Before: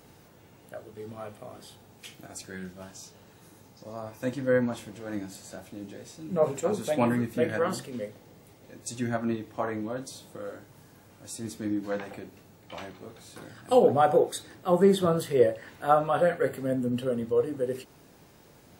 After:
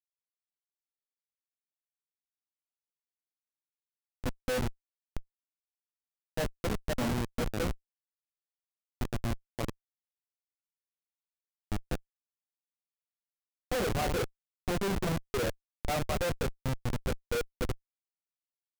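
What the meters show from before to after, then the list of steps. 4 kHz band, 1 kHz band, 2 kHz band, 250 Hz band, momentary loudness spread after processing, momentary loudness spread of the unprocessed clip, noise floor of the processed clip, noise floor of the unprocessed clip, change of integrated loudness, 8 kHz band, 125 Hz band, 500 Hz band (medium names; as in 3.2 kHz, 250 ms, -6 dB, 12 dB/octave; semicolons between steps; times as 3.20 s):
0.0 dB, -10.0 dB, -3.0 dB, -8.0 dB, 10 LU, 22 LU, under -85 dBFS, -56 dBFS, -7.5 dB, -3.0 dB, -1.5 dB, -11.0 dB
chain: treble shelf 7.5 kHz -5 dB; Schmitt trigger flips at -23.5 dBFS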